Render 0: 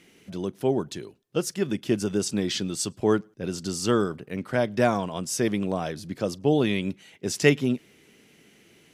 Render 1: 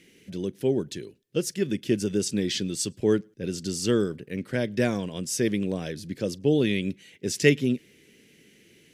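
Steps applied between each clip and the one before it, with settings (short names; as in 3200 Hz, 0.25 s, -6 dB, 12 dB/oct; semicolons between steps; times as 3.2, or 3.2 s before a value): band shelf 940 Hz -11.5 dB 1.3 oct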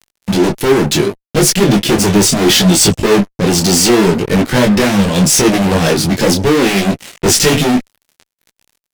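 fuzz box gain 40 dB, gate -47 dBFS; bell 1100 Hz -3 dB 0.64 oct; detuned doubles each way 24 cents; gain +8.5 dB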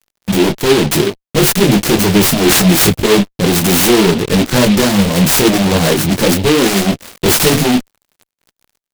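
noise-modulated delay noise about 2700 Hz, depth 0.11 ms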